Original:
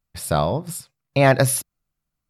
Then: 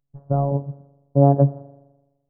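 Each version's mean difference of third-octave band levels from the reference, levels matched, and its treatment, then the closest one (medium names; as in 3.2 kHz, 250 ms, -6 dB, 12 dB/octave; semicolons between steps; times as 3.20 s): 13.5 dB: Gaussian low-pass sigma 12 samples; spring tank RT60 1.1 s, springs 42 ms, chirp 50 ms, DRR 17.5 dB; robot voice 140 Hz; trim +4.5 dB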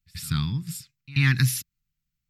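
7.5 dB: Chebyshev band-stop 170–2100 Hz, order 2; peaking EQ 10 kHz -13 dB 0.24 oct; pre-echo 85 ms -21 dB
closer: second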